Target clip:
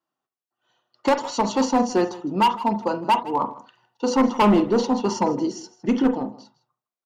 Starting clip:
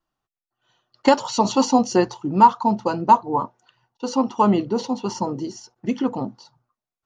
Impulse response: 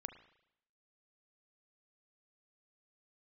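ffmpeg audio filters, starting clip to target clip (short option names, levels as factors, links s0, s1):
-filter_complex "[0:a]highpass=190,equalizer=f=440:w=0.33:g=3.5,asettb=1/sr,asplit=3[s0][s1][s2];[s0]atrim=end=3.404[s3];[s1]atrim=start=3.4:end=6.11,asetpts=PTS-STARTPTS,afade=t=in:d=0.004:c=qsin,afade=t=out:st=2.706:d=0.004:c=qsin,acontrast=47[s4];[s2]atrim=start=6.106[s5];[s3][s4]acrossfade=d=0.004:c1=hsin:c2=qsin[s6];[s6][s5]acrossfade=d=0.004:c1=qsin:c2=hsin,asoftclip=type=hard:threshold=0.355,aecho=1:1:159:0.119[s7];[1:a]atrim=start_sample=2205,atrim=end_sample=3528[s8];[s7][s8]afir=irnorm=-1:irlink=0"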